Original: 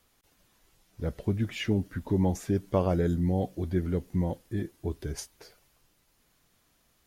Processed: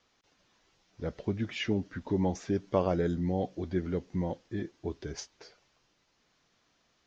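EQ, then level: steep low-pass 6.5 kHz 48 dB/octave; bass shelf 81 Hz -8 dB; bass shelf 170 Hz -5 dB; 0.0 dB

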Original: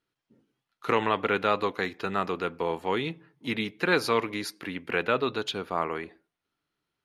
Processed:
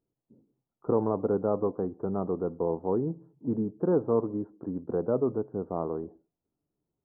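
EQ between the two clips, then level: Gaussian low-pass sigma 12 samples; +4.0 dB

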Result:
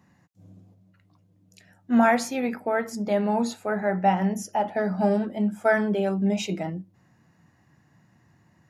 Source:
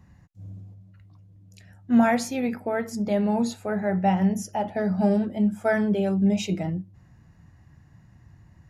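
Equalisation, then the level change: high-pass 200 Hz 12 dB/octave; dynamic bell 1.2 kHz, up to +5 dB, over -40 dBFS, Q 0.95; 0.0 dB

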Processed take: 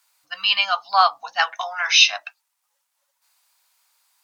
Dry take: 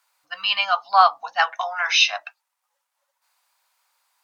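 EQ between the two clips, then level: bass shelf 290 Hz +10 dB; treble shelf 2 kHz +11.5 dB; -5.0 dB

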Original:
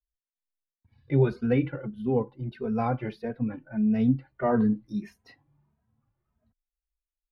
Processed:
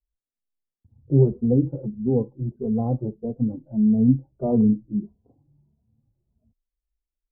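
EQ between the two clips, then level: Gaussian low-pass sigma 15 samples; +6.5 dB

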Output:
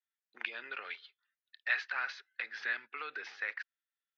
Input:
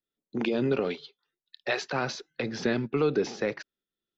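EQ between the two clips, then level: resonant high-pass 1.7 kHz, resonance Q 2.6; distance through air 230 m; -4.0 dB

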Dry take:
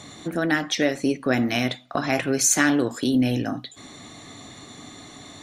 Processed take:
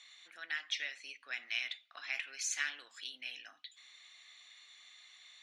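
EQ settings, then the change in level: ladder band-pass 3 kHz, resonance 35%; 0.0 dB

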